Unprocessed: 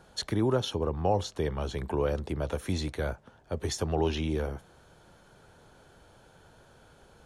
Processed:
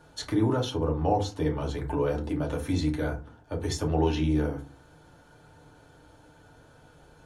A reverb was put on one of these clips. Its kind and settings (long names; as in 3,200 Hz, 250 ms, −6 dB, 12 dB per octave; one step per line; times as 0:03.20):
feedback delay network reverb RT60 0.32 s, low-frequency decay 1.5×, high-frequency decay 0.55×, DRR −0.5 dB
level −2.5 dB